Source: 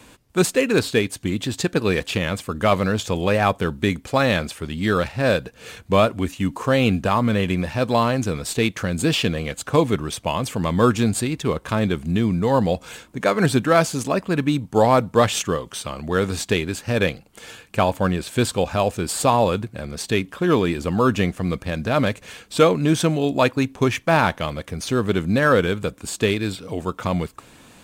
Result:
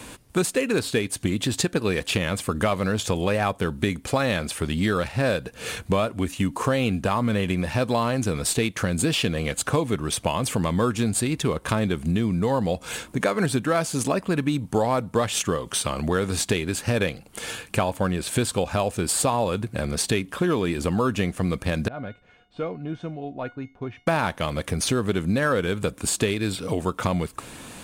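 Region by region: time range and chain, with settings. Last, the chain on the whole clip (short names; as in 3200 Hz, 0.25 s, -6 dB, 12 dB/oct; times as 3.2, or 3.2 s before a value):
21.88–24.07 tape spacing loss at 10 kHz 39 dB + resonator 720 Hz, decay 0.31 s, mix 90%
whole clip: bell 9700 Hz +6.5 dB 0.37 oct; compressor 4:1, threshold -28 dBFS; gain +6.5 dB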